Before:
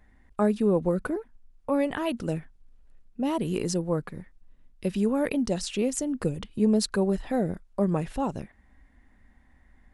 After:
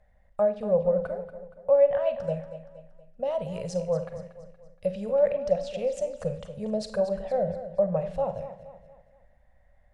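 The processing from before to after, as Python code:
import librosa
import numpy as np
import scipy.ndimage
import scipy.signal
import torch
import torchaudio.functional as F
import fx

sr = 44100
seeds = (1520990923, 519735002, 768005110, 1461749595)

p1 = fx.curve_eq(x, sr, hz=(170.0, 330.0, 560.0, 970.0), db=(0, -26, 14, -4))
p2 = fx.env_lowpass_down(p1, sr, base_hz=2400.0, full_db=-16.0)
p3 = fx.high_shelf(p2, sr, hz=8700.0, db=-4.0)
p4 = p3 + fx.echo_feedback(p3, sr, ms=235, feedback_pct=43, wet_db=-12.5, dry=0)
p5 = fx.rev_schroeder(p4, sr, rt60_s=0.43, comb_ms=33, drr_db=10.0)
y = p5 * 10.0 ** (-4.0 / 20.0)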